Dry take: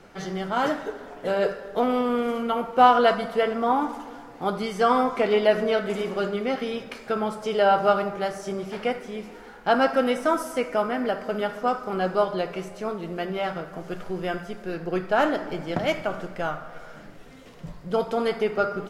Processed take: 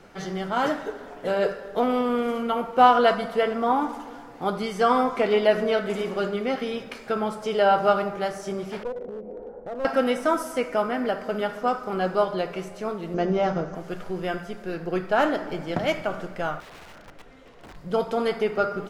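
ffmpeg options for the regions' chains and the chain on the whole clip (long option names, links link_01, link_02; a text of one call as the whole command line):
ffmpeg -i in.wav -filter_complex "[0:a]asettb=1/sr,asplit=3[link_01][link_02][link_03];[link_01]atrim=end=8.834[link_04];[link_02]atrim=start=8.83:end=9.85,asetpts=PTS-STARTPTS,afade=type=in:duration=0.004:curve=qsin,afade=type=out:start_time=1.016:duration=0.004:curve=qsin,acompressor=threshold=-39dB:ratio=3:attack=3.2:release=140:knee=1:detection=peak,lowpass=frequency=540:width_type=q:width=4.7,aeval=exprs='clip(val(0),-1,0.0282)':channel_layout=same[link_05];[link_03]atrim=start=9.846[link_06];[link_04][link_05]acrossfade=duration=0.004:curve1=hsin:curve2=qsin[link_07];[link_07][link_06]acrossfade=duration=0.004:curve1=qsin:curve2=hsin,asettb=1/sr,asplit=3[link_08][link_09][link_10];[link_08]atrim=end=13.144[link_11];[link_09]atrim=start=13.14:end=13.75,asetpts=PTS-STARTPTS,afade=type=in:duration=0.004:curve=qsin,afade=type=out:start_time=0.606:duration=0.004:curve=qsin,lowpass=frequency=6100:width_type=q:width=7.3,tiltshelf=frequency=1300:gain=8[link_12];[link_10]atrim=start=13.746[link_13];[link_11][link_12]acrossfade=duration=0.004:curve1=hsin:curve2=qsin[link_14];[link_14][link_13]acrossfade=duration=0.004:curve1=qsin:curve2=hsin,asettb=1/sr,asplit=3[link_15][link_16][link_17];[link_15]atrim=end=16.604[link_18];[link_16]atrim=start=16.6:end=17.76,asetpts=PTS-STARTPTS,afade=type=in:duration=0.004:curve=qsin,afade=type=out:start_time=1.156:duration=0.004:curve=qsin,equalizer=frequency=170:width=0.94:gain=-7.5,aeval=exprs='(mod(79.4*val(0)+1,2)-1)/79.4':channel_layout=same,lowpass=frequency=2500:poles=1[link_19];[link_17]atrim=start=17.756[link_20];[link_18][link_19]acrossfade=duration=0.004:curve1=hsin:curve2=qsin[link_21];[link_21][link_20]acrossfade=duration=0.004:curve1=qsin:curve2=hsin" out.wav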